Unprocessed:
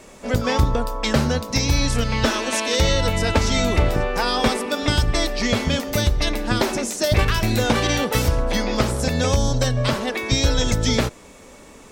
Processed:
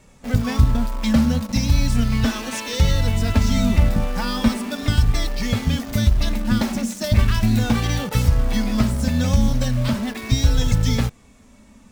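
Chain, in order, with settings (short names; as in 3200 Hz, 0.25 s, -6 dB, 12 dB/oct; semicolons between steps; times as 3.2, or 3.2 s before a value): resonant low shelf 270 Hz +7.5 dB, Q 3; in parallel at -5 dB: bit-crush 4-bit; on the sum: flange 0.37 Hz, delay 2.2 ms, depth 1.5 ms, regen -40%; gain -5.5 dB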